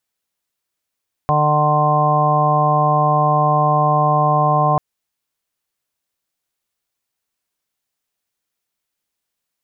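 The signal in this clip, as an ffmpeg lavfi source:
-f lavfi -i "aevalsrc='0.126*sin(2*PI*150*t)+0.0335*sin(2*PI*300*t)+0.0398*sin(2*PI*450*t)+0.0891*sin(2*PI*600*t)+0.141*sin(2*PI*750*t)+0.0398*sin(2*PI*900*t)+0.141*sin(2*PI*1050*t)':d=3.49:s=44100"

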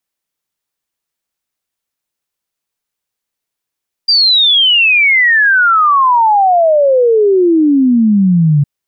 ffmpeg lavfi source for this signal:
-f lavfi -i "aevalsrc='0.501*clip(min(t,4.56-t)/0.01,0,1)*sin(2*PI*4800*4.56/log(140/4800)*(exp(log(140/4800)*t/4.56)-1))':d=4.56:s=44100"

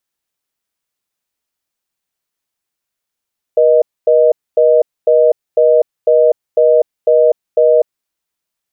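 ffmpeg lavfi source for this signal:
-f lavfi -i "aevalsrc='0.355*(sin(2*PI*480*t)+sin(2*PI*620*t))*clip(min(mod(t,0.5),0.25-mod(t,0.5))/0.005,0,1)':d=4.39:s=44100"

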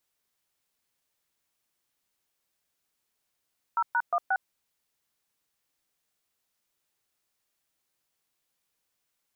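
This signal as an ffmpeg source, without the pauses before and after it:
-f lavfi -i "aevalsrc='0.0562*clip(min(mod(t,0.178),0.056-mod(t,0.178))/0.002,0,1)*(eq(floor(t/0.178),0)*(sin(2*PI*941*mod(t,0.178))+sin(2*PI*1336*mod(t,0.178)))+eq(floor(t/0.178),1)*(sin(2*PI*941*mod(t,0.178))+sin(2*PI*1477*mod(t,0.178)))+eq(floor(t/0.178),2)*(sin(2*PI*697*mod(t,0.178))+sin(2*PI*1209*mod(t,0.178)))+eq(floor(t/0.178),3)*(sin(2*PI*770*mod(t,0.178))+sin(2*PI*1477*mod(t,0.178))))':d=0.712:s=44100"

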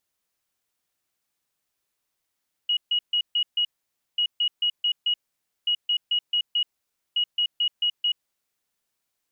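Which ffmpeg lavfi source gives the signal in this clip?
-f lavfi -i "aevalsrc='0.106*sin(2*PI*2900*t)*clip(min(mod(mod(t,1.49),0.22),0.08-mod(mod(t,1.49),0.22))/0.005,0,1)*lt(mod(t,1.49),1.1)':d=5.96:s=44100"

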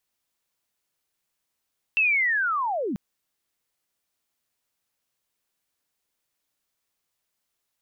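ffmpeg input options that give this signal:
-f lavfi -i "aevalsrc='pow(10,(-17.5-8*t/0.99)/20)*sin(2*PI*(2700*t-2530*t*t/(2*0.99)))':d=0.99:s=44100"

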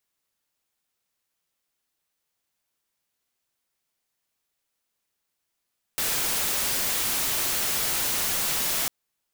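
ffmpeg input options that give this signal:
-f lavfi -i "anoisesrc=c=white:a=0.0868:d=2.9:r=44100:seed=1"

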